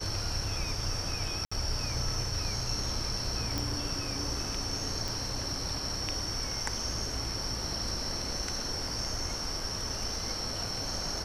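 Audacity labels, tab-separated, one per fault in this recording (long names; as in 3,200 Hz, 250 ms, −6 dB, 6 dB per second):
1.450000	1.510000	drop-out 65 ms
3.580000	3.580000	click
5.080000	5.080000	click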